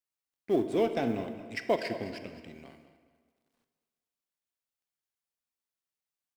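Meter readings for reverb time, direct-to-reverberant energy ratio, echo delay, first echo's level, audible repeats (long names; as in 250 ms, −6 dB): 1.7 s, 8.0 dB, 214 ms, −14.5 dB, 2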